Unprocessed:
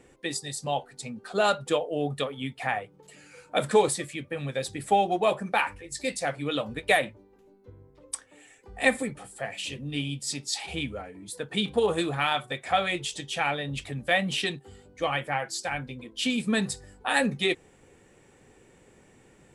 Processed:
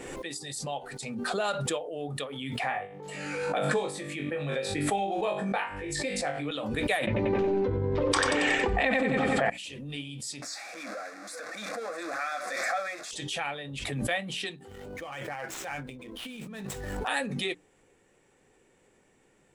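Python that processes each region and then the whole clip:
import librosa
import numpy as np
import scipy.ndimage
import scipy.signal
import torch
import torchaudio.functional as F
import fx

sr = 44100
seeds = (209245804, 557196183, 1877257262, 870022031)

y = fx.chain(x, sr, fx.lowpass(hz=3600.0, slope=6),
    fx.room_flutter(wall_m=3.5, rt60_s=0.28),
    fx.band_squash(depth_pct=70), at=(2.59, 6.51))
y = fx.chain(y, sr, fx.air_absorb(metres=210.0),
    fx.echo_feedback(ms=92, feedback_pct=52, wet_db=-8.5),
    fx.env_flatten(amount_pct=100), at=(7.07, 9.5))
y = fx.chain(y, sr, fx.zero_step(step_db=-24.5),
    fx.bandpass_edges(low_hz=480.0, high_hz=5700.0),
    fx.fixed_phaser(hz=610.0, stages=8), at=(10.42, 13.11))
y = fx.chain(y, sr, fx.median_filter(points=9),
    fx.transient(attack_db=-4, sustain_db=9),
    fx.over_compress(threshold_db=-30.0, ratio=-0.5), at=(14.67, 17.08))
y = fx.peak_eq(y, sr, hz=84.0, db=-5.5, octaves=2.5)
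y = fx.hum_notches(y, sr, base_hz=60, count=5)
y = fx.pre_swell(y, sr, db_per_s=28.0)
y = y * 10.0 ** (-6.5 / 20.0)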